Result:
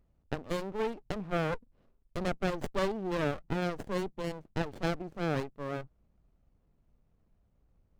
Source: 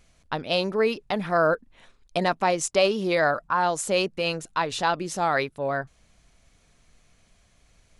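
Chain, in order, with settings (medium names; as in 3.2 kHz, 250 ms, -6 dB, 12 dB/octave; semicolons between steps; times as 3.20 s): local Wiener filter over 25 samples; sliding maximum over 33 samples; trim -6.5 dB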